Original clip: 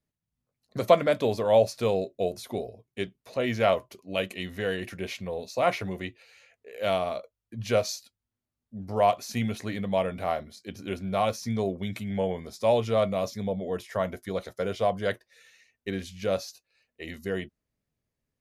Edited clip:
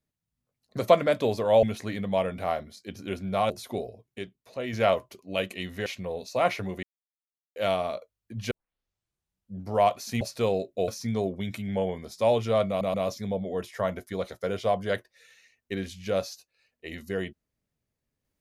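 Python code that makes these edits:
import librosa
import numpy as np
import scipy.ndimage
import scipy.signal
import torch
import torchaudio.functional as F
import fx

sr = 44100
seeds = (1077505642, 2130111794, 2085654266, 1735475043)

y = fx.edit(x, sr, fx.swap(start_s=1.63, length_s=0.67, other_s=9.43, other_length_s=1.87),
    fx.clip_gain(start_s=2.99, length_s=0.54, db=-5.5),
    fx.cut(start_s=4.66, length_s=0.42),
    fx.silence(start_s=6.05, length_s=0.73),
    fx.tape_start(start_s=7.73, length_s=1.12),
    fx.stutter(start_s=13.1, slice_s=0.13, count=3), tone=tone)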